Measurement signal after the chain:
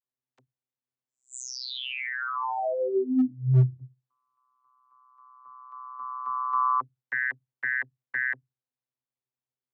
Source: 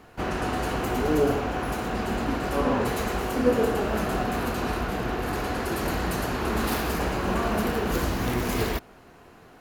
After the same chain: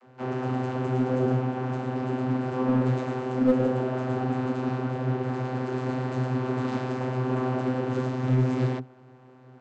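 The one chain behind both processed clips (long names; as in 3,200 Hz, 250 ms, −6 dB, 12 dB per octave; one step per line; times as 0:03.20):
channel vocoder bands 32, saw 128 Hz
in parallel at −7 dB: wave folding −18.5 dBFS
on the sum: level −1.5 dB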